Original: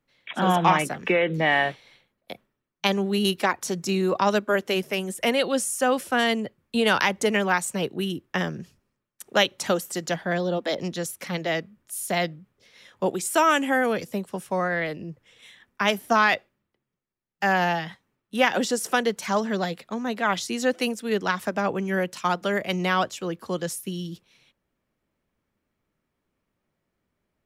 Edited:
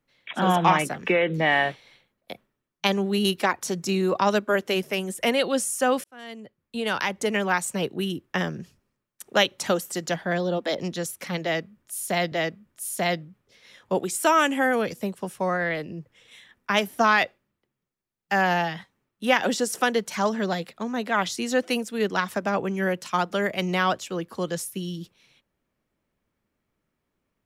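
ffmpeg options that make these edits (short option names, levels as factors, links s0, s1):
-filter_complex "[0:a]asplit=3[s0][s1][s2];[s0]atrim=end=6.04,asetpts=PTS-STARTPTS,afade=t=out:st=6.036:d=0.004:c=hsin[s3];[s1]atrim=start=6.04:end=12.322,asetpts=PTS-STARTPTS,afade=t=in:d=1.66[s4];[s2]atrim=start=11.428[s5];[s3][s4]concat=n=2:v=0:a=1[s6];[s6][s5]acrossfade=d=0.004:c1=hsin:c2=hsin"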